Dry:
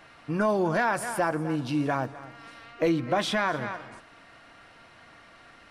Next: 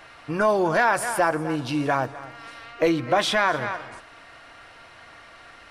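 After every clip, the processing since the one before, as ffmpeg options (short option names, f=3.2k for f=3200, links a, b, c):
-af "equalizer=f=200:t=o:w=1.3:g=-8,volume=6dB"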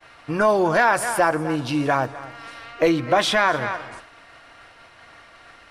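-af "agate=range=-33dB:threshold=-43dB:ratio=3:detection=peak,volume=2.5dB"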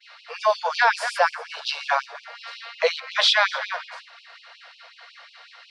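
-af "lowpass=f=4.5k:t=q:w=2.6,afftfilt=real='re*gte(b*sr/1024,430*pow(2500/430,0.5+0.5*sin(2*PI*5.5*pts/sr)))':imag='im*gte(b*sr/1024,430*pow(2500/430,0.5+0.5*sin(2*PI*5.5*pts/sr)))':win_size=1024:overlap=0.75"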